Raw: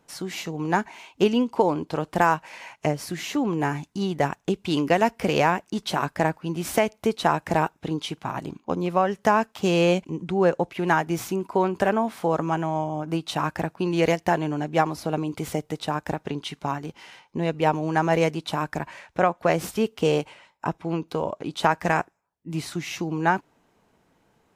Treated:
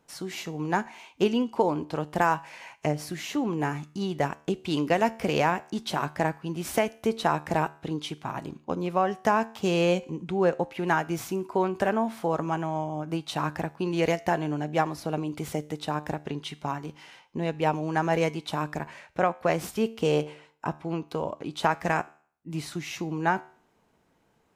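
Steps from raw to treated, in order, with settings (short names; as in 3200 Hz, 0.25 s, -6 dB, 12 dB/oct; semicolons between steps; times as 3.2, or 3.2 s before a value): resonator 75 Hz, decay 0.5 s, harmonics all, mix 40%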